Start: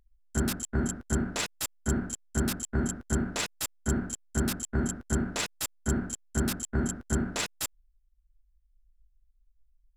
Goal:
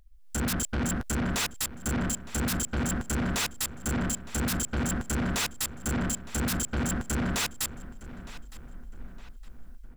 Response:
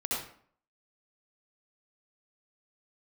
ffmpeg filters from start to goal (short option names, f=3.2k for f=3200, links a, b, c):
-filter_complex "[0:a]equalizer=f=360:t=o:w=1.3:g=-7.5,bandreject=f=610:w=12,asplit=2[a][b];[b]acompressor=threshold=-39dB:ratio=6,volume=2.5dB[c];[a][c]amix=inputs=2:normalize=0,alimiter=limit=-23.5dB:level=0:latency=1:release=21,dynaudnorm=f=120:g=5:m=13dB,asoftclip=type=tanh:threshold=-28dB,asplit=2[d][e];[e]adelay=912,lowpass=f=3.4k:p=1,volume=-15.5dB,asplit=2[f][g];[g]adelay=912,lowpass=f=3.4k:p=1,volume=0.48,asplit=2[h][i];[i]adelay=912,lowpass=f=3.4k:p=1,volume=0.48,asplit=2[j][k];[k]adelay=912,lowpass=f=3.4k:p=1,volume=0.48[l];[f][h][j][l]amix=inputs=4:normalize=0[m];[d][m]amix=inputs=2:normalize=0,volume=1.5dB"